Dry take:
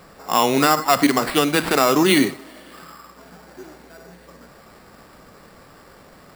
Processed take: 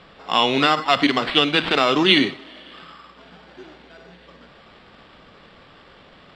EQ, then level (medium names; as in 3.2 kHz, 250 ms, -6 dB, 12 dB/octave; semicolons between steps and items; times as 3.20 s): resonant low-pass 3.3 kHz, resonance Q 3.9; -2.5 dB